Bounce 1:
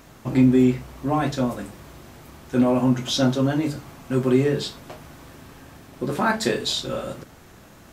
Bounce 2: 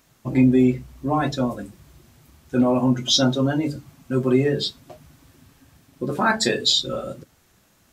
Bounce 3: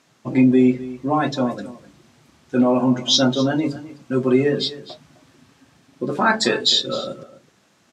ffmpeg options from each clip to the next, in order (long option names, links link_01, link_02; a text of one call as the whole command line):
ffmpeg -i in.wav -af "afftdn=noise_reduction=15:noise_floor=-31,highshelf=frequency=2300:gain=10" out.wav
ffmpeg -i in.wav -af "highpass=160,lowpass=6800,aecho=1:1:256:0.15,volume=2.5dB" out.wav